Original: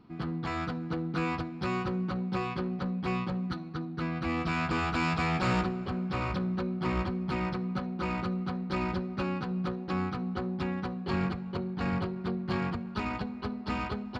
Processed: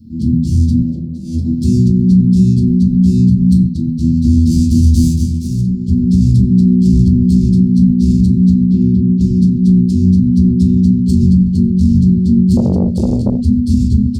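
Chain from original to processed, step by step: tracing distortion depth 0.095 ms; inverse Chebyshev band-stop 690–1800 Hz, stop band 70 dB; 5.01–6 dip -10.5 dB, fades 0.29 s; speakerphone echo 0.37 s, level -20 dB; 0.78–1.52 negative-ratio compressor -41 dBFS, ratio -0.5; 8.68–9.21 BPF 120–2300 Hz; reverb, pre-delay 6 ms, DRR -7 dB; maximiser +16 dB; 12.57–13.41 core saturation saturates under 240 Hz; gain -1 dB

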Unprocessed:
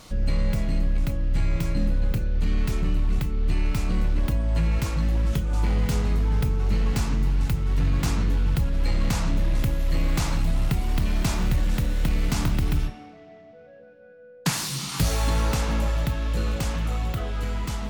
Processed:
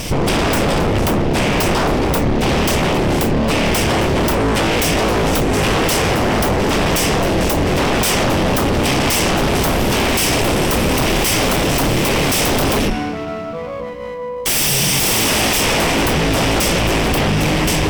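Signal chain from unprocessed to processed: minimum comb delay 0.36 ms; sine folder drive 20 dB, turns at -12.5 dBFS

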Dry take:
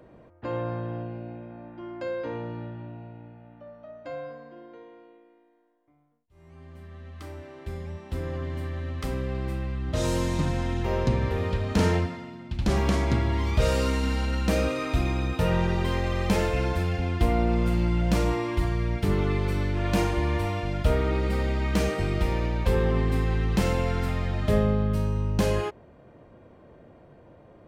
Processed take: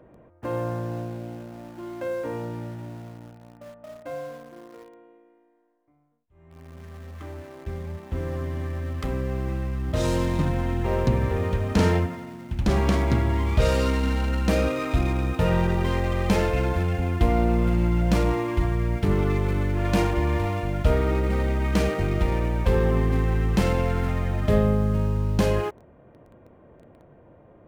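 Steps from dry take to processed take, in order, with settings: Wiener smoothing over 9 samples; in parallel at -10 dB: bit-crush 7-bit

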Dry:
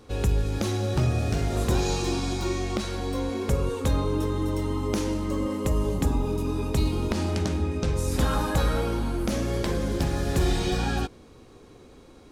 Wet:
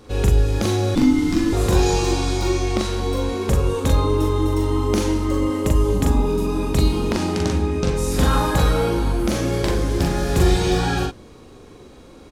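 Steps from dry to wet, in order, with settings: doubler 41 ms -2.5 dB; 0.95–1.53 frequency shift -380 Hz; gain +4.5 dB

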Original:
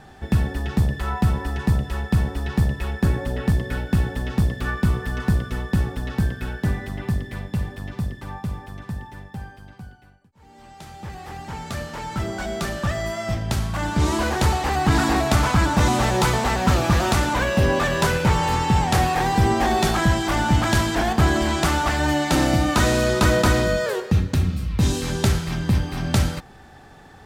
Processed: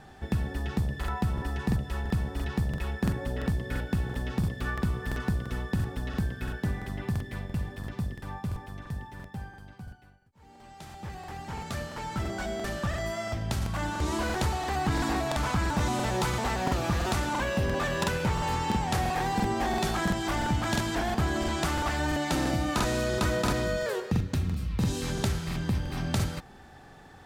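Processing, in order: compressor 2:1, threshold -23 dBFS, peak gain reduction 6 dB; crackling interface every 0.34 s, samples 2048, repeat, from 0.99; gain -4.5 dB

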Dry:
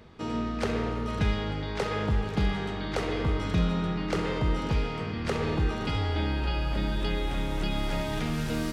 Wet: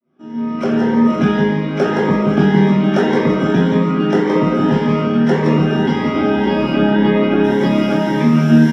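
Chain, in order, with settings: opening faded in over 2.06 s; 6.73–7.44 LPF 3300 Hz 12 dB/oct; feedback echo 0.169 s, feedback 37%, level -4 dB; reverb, pre-delay 3 ms, DRR -4 dB; AGC; bell 160 Hz +2.5 dB; cascading phaser rising 1.8 Hz; gain -1.5 dB

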